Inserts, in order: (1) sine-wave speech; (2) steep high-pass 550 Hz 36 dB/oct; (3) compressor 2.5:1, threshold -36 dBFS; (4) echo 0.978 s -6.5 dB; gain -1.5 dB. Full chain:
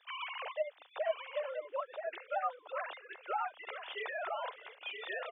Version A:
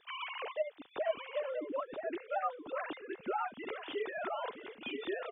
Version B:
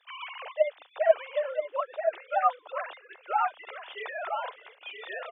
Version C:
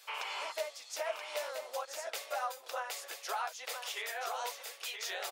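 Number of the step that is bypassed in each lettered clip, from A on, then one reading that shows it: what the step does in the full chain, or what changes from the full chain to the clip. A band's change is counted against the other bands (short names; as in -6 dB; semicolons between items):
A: 2, momentary loudness spread change -1 LU; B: 3, mean gain reduction 4.0 dB; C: 1, momentary loudness spread change -4 LU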